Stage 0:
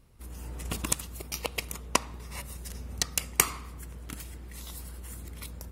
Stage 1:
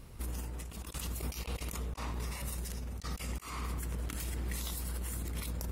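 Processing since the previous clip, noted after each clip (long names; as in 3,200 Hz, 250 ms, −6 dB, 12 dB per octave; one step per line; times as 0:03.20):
compressor whose output falls as the input rises −44 dBFS, ratio −1
level +3.5 dB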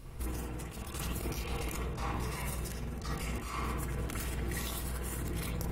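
convolution reverb, pre-delay 48 ms, DRR −3 dB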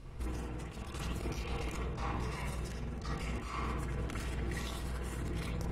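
high-frequency loss of the air 62 metres
level −1 dB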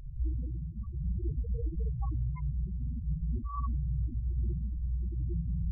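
spectral peaks only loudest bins 4
level +8 dB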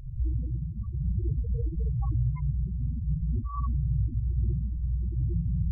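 parametric band 110 Hz +8 dB 1 octave
level +1.5 dB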